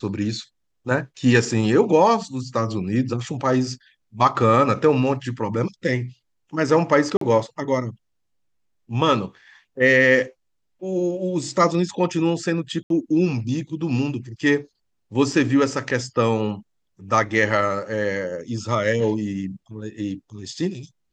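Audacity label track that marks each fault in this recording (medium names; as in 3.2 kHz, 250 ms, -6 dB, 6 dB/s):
7.170000	7.210000	dropout 43 ms
12.830000	12.900000	dropout 72 ms
15.320000	15.320000	dropout 2.6 ms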